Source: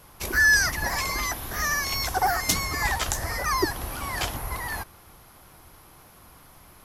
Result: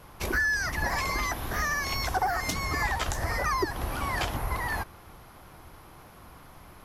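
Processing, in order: compressor 6:1, threshold -26 dBFS, peak gain reduction 10.5 dB; high shelf 4300 Hz -10 dB; gain +3 dB

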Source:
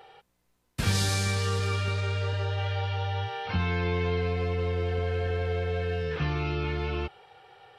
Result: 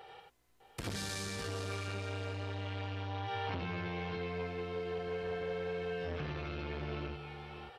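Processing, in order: compressor 4:1, threshold -34 dBFS, peak gain reduction 11.5 dB; tapped delay 58/61/86/603/622 ms -12.5/-16.5/-3.5/-10/-11.5 dB; core saturation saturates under 570 Hz; gain -1.5 dB

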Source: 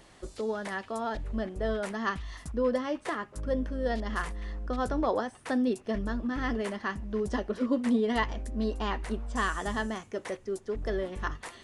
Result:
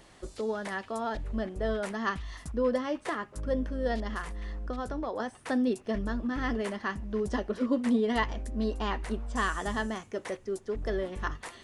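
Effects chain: 4.06–5.2 compressor 6:1, threshold -31 dBFS, peak gain reduction 8 dB

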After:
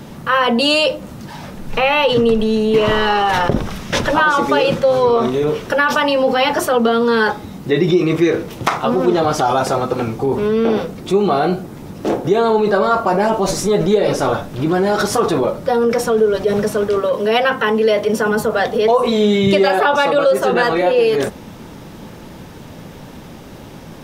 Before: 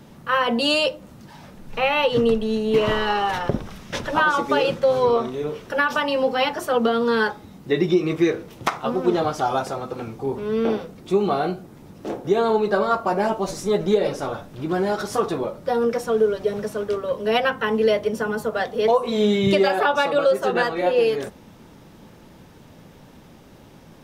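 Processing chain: 17–18.31 HPF 180 Hz 6 dB/oct; in parallel at -1.5 dB: negative-ratio compressor -27 dBFS; on the sum: gain +3.5 dB

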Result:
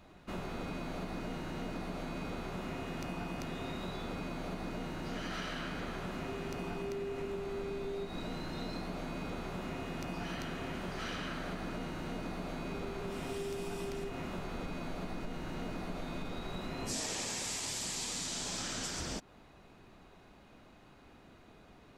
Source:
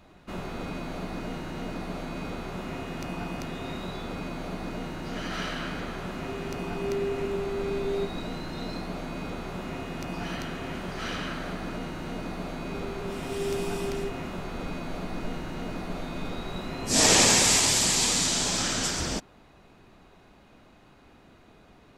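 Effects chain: compressor 12:1, threshold -32 dBFS, peak gain reduction 16.5 dB; gain -3 dB

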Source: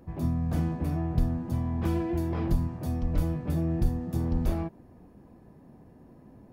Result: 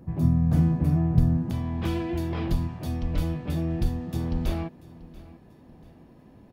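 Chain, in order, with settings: bell 140 Hz +10 dB 1.4 oct, from 1.51 s 3300 Hz; feedback echo 0.687 s, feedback 39%, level -20 dB

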